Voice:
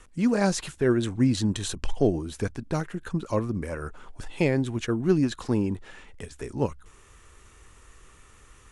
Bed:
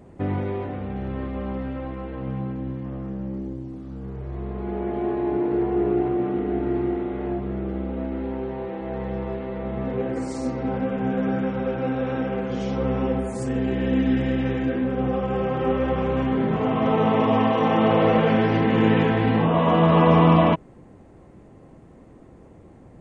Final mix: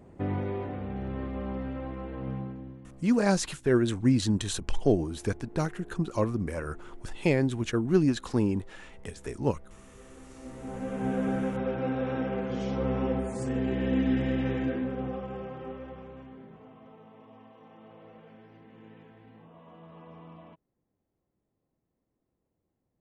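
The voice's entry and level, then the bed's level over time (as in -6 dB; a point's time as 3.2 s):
2.85 s, -1.0 dB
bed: 2.33 s -5 dB
3.31 s -27.5 dB
10 s -27.5 dB
11.07 s -5 dB
14.63 s -5 dB
17.06 s -33.5 dB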